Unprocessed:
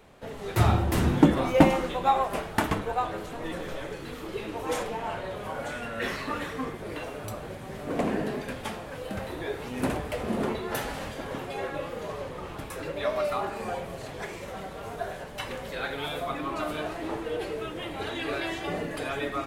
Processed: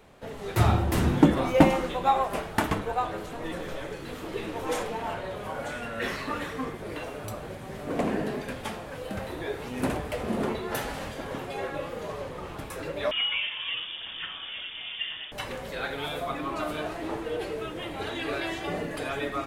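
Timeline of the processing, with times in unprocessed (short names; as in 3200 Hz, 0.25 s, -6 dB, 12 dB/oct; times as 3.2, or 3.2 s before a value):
3.18–5.14 echo 0.909 s -6.5 dB
13.11–15.32 inverted band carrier 3500 Hz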